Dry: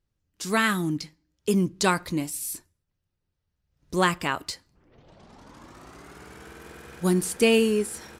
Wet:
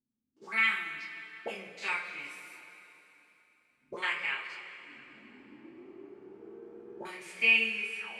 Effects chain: stepped spectrum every 50 ms; auto-wah 250–2300 Hz, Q 8.2, up, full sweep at -27.5 dBFS; two-slope reverb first 0.24 s, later 3.3 s, from -18 dB, DRR -7.5 dB; gain +2.5 dB

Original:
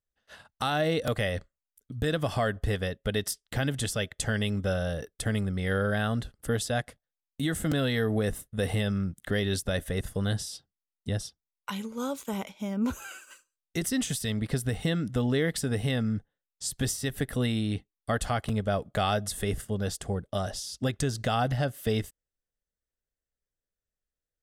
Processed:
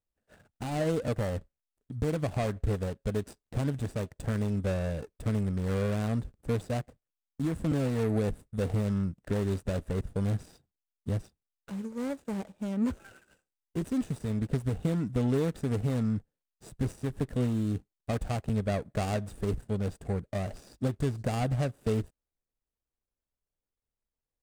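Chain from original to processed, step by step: median filter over 41 samples; bell 8400 Hz +8 dB 0.54 oct

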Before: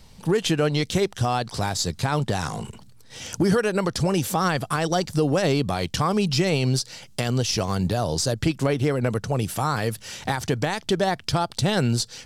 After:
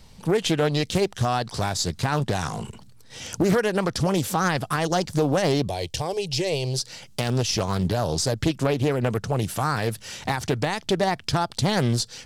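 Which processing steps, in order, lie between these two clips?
5.68–6.79 fixed phaser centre 530 Hz, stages 4; Doppler distortion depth 0.44 ms

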